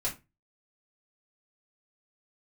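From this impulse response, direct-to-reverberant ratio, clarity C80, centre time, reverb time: −5.5 dB, 21.0 dB, 17 ms, 0.25 s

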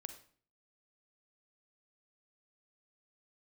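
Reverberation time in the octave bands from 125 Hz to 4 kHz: 0.60, 0.60, 0.50, 0.45, 0.45, 0.40 seconds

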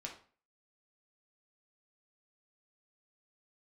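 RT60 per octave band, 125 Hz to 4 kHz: 0.50, 0.45, 0.40, 0.40, 0.40, 0.35 seconds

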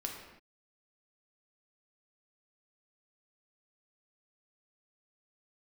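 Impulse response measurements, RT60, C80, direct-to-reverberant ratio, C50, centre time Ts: non-exponential decay, 5.5 dB, 0.5 dB, 3.5 dB, 44 ms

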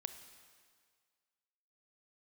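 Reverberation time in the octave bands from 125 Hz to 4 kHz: 1.7, 1.7, 1.8, 1.9, 1.8, 1.8 seconds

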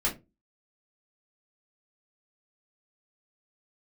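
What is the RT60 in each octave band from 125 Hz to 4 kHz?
0.35, 0.35, 0.30, 0.20, 0.20, 0.15 seconds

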